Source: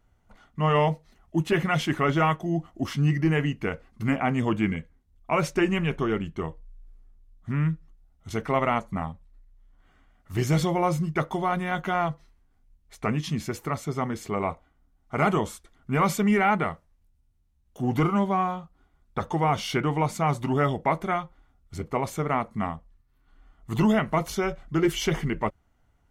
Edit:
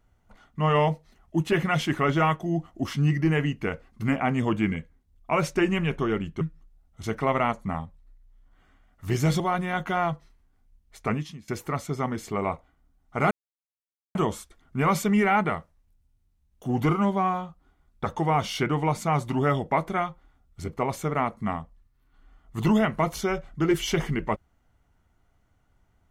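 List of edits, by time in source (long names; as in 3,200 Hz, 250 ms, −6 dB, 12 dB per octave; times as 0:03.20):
0:06.41–0:07.68: remove
0:10.67–0:11.38: remove
0:13.11–0:13.46: fade out quadratic, to −20 dB
0:15.29: splice in silence 0.84 s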